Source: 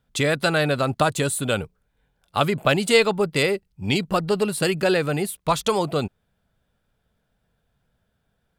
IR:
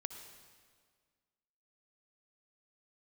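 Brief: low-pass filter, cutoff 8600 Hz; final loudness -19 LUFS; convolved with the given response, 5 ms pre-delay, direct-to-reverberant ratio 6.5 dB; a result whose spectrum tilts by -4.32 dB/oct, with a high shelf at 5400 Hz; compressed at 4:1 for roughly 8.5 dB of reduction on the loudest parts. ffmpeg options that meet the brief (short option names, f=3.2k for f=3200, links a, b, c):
-filter_complex "[0:a]lowpass=8.6k,highshelf=f=5.4k:g=-5,acompressor=threshold=-22dB:ratio=4,asplit=2[a][b];[1:a]atrim=start_sample=2205,adelay=5[c];[b][c]afir=irnorm=-1:irlink=0,volume=-4.5dB[d];[a][d]amix=inputs=2:normalize=0,volume=7dB"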